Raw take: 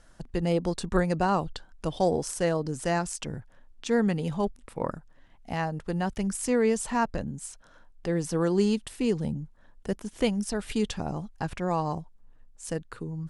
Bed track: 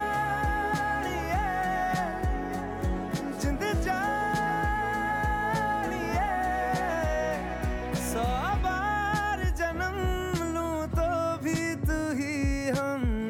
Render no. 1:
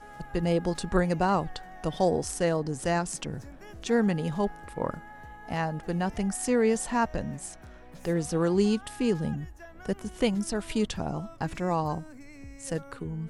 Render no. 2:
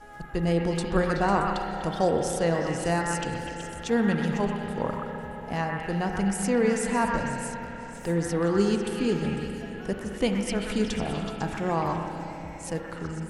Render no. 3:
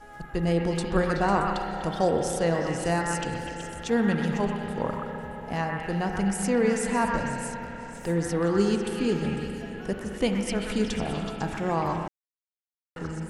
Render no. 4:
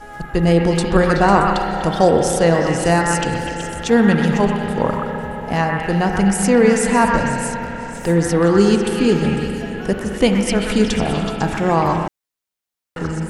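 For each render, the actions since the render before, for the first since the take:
add bed track -18.5 dB
on a send: delay with a stepping band-pass 0.125 s, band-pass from 1400 Hz, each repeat 0.7 oct, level -0.5 dB; on the sum: spring tank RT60 4 s, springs 30/41 ms, chirp 45 ms, DRR 3.5 dB
12.08–12.96 mute
gain +10.5 dB; limiter -1 dBFS, peak gain reduction 2 dB

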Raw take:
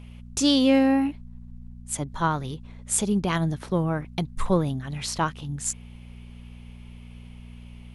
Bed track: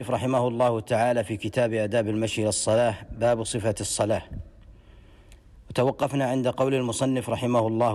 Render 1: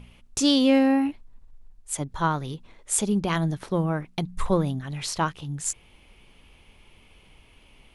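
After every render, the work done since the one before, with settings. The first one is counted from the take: de-hum 60 Hz, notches 4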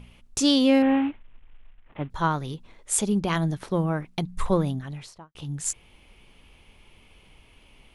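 0.82–2.1 CVSD 16 kbps; 4.71–5.35 studio fade out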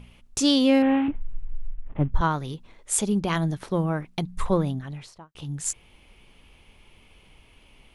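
1.08–2.21 tilt -3.5 dB/oct; 4.44–5.13 high shelf 5100 Hz -4 dB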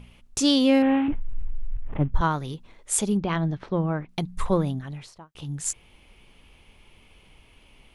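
1.08–2 sustainer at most 22 dB/s; 3.17–4.09 air absorption 200 m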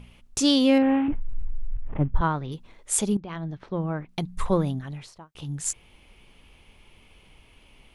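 0.78–2.52 air absorption 240 m; 3.17–4.75 fade in equal-power, from -13.5 dB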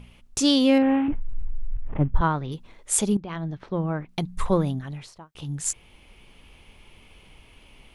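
vocal rider within 3 dB 2 s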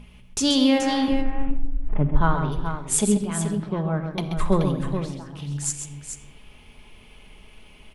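tapped delay 0.132/0.429 s -8.5/-8.5 dB; shoebox room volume 3900 m³, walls furnished, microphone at 1.4 m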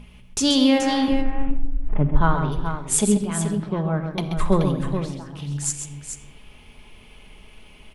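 gain +1.5 dB

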